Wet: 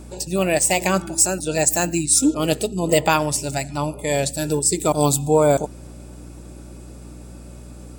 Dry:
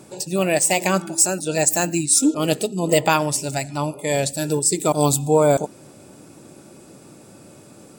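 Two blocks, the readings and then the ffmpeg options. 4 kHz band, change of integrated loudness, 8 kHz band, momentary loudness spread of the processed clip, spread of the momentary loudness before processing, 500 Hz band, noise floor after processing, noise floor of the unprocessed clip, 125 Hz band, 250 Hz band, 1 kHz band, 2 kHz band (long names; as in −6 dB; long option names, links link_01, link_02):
0.0 dB, 0.0 dB, 0.0 dB, 8 LU, 8 LU, 0.0 dB, −39 dBFS, −47 dBFS, +0.5 dB, 0.0 dB, 0.0 dB, 0.0 dB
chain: -af "aeval=exprs='val(0)+0.0126*(sin(2*PI*60*n/s)+sin(2*PI*2*60*n/s)/2+sin(2*PI*3*60*n/s)/3+sin(2*PI*4*60*n/s)/4+sin(2*PI*5*60*n/s)/5)':channel_layout=same"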